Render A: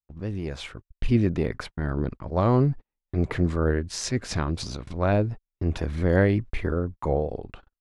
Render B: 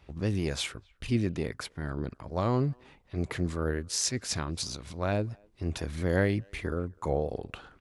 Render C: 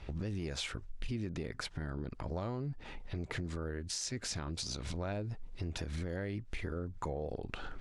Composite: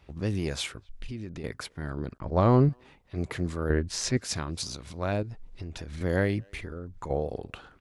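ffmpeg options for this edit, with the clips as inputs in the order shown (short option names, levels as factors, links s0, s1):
-filter_complex "[2:a]asplit=3[s0][s1][s2];[0:a]asplit=2[s3][s4];[1:a]asplit=6[s5][s6][s7][s8][s9][s10];[s5]atrim=end=0.892[s11];[s0]atrim=start=0.888:end=1.442[s12];[s6]atrim=start=1.438:end=2.182[s13];[s3]atrim=start=2.178:end=2.692[s14];[s7]atrim=start=2.688:end=3.702[s15];[s4]atrim=start=3.698:end=4.172[s16];[s8]atrim=start=4.168:end=5.232[s17];[s1]atrim=start=5.228:end=6.012[s18];[s9]atrim=start=6.008:end=6.612[s19];[s2]atrim=start=6.608:end=7.102[s20];[s10]atrim=start=7.098[s21];[s11][s12]acrossfade=d=0.004:c1=hsin:c2=hsin[s22];[s22][s13]acrossfade=d=0.004:c1=hsin:c2=hsin[s23];[s23][s14]acrossfade=d=0.004:c1=hsin:c2=hsin[s24];[s24][s15]acrossfade=d=0.004:c1=hsin:c2=hsin[s25];[s25][s16]acrossfade=d=0.004:c1=hsin:c2=hsin[s26];[s26][s17]acrossfade=d=0.004:c1=hsin:c2=hsin[s27];[s27][s18]acrossfade=d=0.004:c1=hsin:c2=hsin[s28];[s28][s19]acrossfade=d=0.004:c1=hsin:c2=hsin[s29];[s29][s20]acrossfade=d=0.004:c1=hsin:c2=hsin[s30];[s30][s21]acrossfade=d=0.004:c1=hsin:c2=hsin"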